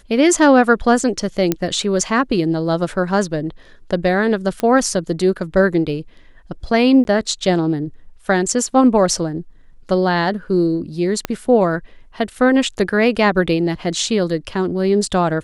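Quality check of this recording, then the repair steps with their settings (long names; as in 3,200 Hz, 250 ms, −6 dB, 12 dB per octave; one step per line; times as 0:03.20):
0:01.52: click −3 dBFS
0:04.60: click −9 dBFS
0:07.04–0:07.05: drop-out 11 ms
0:11.25: click −6 dBFS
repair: click removal
repair the gap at 0:07.04, 11 ms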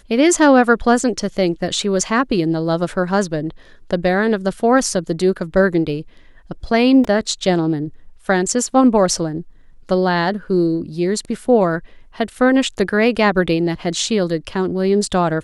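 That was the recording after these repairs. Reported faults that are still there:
0:11.25: click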